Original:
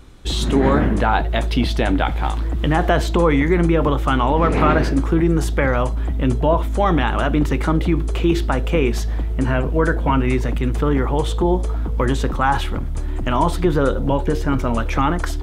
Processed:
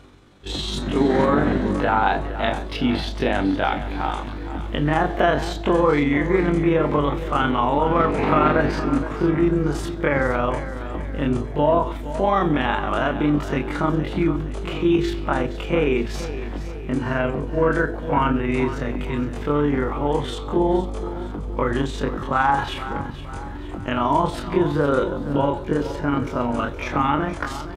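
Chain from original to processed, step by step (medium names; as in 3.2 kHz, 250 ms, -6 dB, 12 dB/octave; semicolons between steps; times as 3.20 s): high-pass 150 Hz 6 dB/octave; treble shelf 6.8 kHz -12 dB; reverse; upward compressor, threshold -34 dBFS; reverse; granular stretch 1.8×, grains 92 ms; feedback delay 468 ms, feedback 47%, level -13 dB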